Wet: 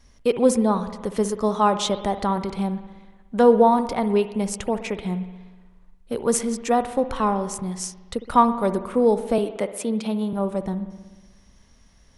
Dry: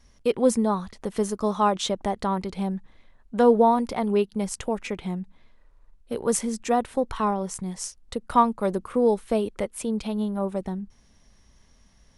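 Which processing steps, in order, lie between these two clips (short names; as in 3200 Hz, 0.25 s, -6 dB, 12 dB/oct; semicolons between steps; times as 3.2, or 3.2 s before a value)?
9.38–10.33 steep high-pass 160 Hz; spring tank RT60 1.3 s, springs 60 ms, chirp 70 ms, DRR 11 dB; gain +2.5 dB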